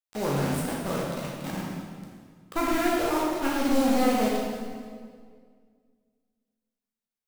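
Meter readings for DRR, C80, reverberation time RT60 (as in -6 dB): -4.5 dB, 1.0 dB, 1.9 s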